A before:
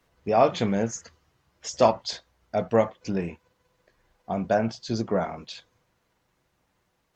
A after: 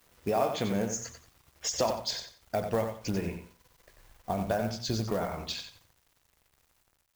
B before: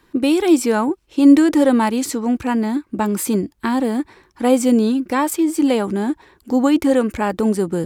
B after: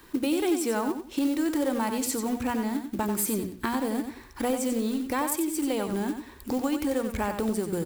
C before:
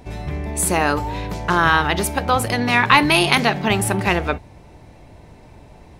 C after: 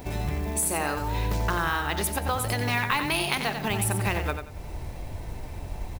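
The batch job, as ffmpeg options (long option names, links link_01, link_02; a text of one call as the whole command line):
ffmpeg -i in.wav -filter_complex "[0:a]asplit=2[link_01][link_02];[link_02]acrusher=bits=3:mode=log:mix=0:aa=0.000001,volume=-7dB[link_03];[link_01][link_03]amix=inputs=2:normalize=0,highshelf=frequency=11000:gain=11.5,bandreject=frequency=60:width_type=h:width=6,bandreject=frequency=120:width_type=h:width=6,bandreject=frequency=180:width_type=h:width=6,bandreject=frequency=240:width_type=h:width=6,acompressor=threshold=-29dB:ratio=3,acrusher=bits=9:mix=0:aa=0.000001,asubboost=boost=3:cutoff=110,aecho=1:1:91|182|273:0.422|0.097|0.0223" out.wav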